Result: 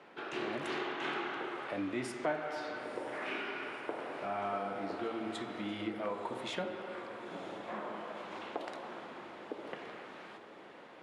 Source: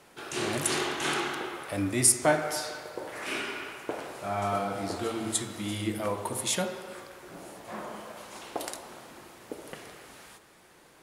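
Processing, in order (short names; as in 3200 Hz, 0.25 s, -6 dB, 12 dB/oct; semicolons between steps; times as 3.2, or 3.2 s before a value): three-band isolator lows -19 dB, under 170 Hz, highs -19 dB, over 3600 Hz; compressor 2:1, threshold -41 dBFS, peak gain reduction 12.5 dB; air absorption 60 m; diffused feedback echo 0.973 s, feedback 66%, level -13 dB; gain +1.5 dB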